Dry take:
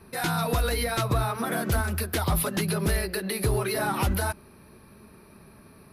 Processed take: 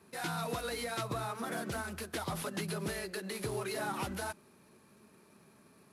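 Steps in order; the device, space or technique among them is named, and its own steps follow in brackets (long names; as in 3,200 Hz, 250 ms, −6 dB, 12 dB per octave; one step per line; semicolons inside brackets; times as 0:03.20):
early wireless headset (high-pass filter 150 Hz 12 dB per octave; variable-slope delta modulation 64 kbit/s)
level −9 dB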